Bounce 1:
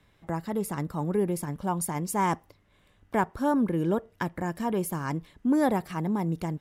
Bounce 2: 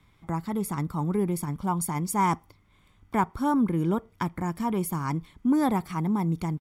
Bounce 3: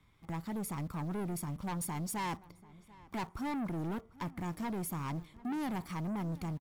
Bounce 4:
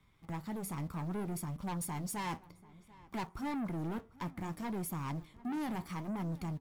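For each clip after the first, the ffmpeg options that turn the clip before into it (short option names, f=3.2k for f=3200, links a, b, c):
-af "aecho=1:1:0.9:0.53"
-filter_complex "[0:a]asplit=2[a][b];[b]acrusher=bits=6:mix=0:aa=0.000001,volume=-11dB[c];[a][c]amix=inputs=2:normalize=0,asoftclip=type=tanh:threshold=-28dB,asplit=2[d][e];[e]adelay=740,lowpass=f=2.9k:p=1,volume=-21dB,asplit=2[f][g];[g]adelay=740,lowpass=f=2.9k:p=1,volume=0.48,asplit=2[h][i];[i]adelay=740,lowpass=f=2.9k:p=1,volume=0.48[j];[d][f][h][j]amix=inputs=4:normalize=0,volume=-6dB"
-af "flanger=delay=5:depth=8.1:regen=-66:speed=0.62:shape=sinusoidal,volume=3dB"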